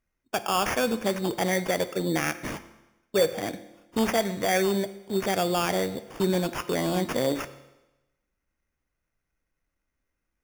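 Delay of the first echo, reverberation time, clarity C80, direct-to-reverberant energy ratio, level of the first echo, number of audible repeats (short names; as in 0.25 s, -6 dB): none, 1.0 s, 16.0 dB, 11.5 dB, none, none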